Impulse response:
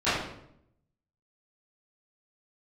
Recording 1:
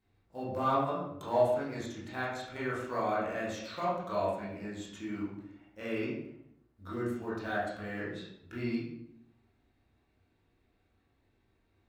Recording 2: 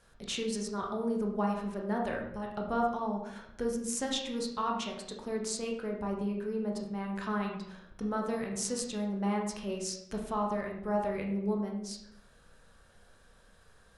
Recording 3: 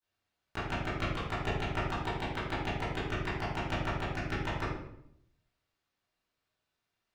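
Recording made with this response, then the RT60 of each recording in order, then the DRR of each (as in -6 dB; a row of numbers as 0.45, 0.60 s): 3; 0.75, 0.75, 0.75 s; -9.0, -0.5, -18.0 dB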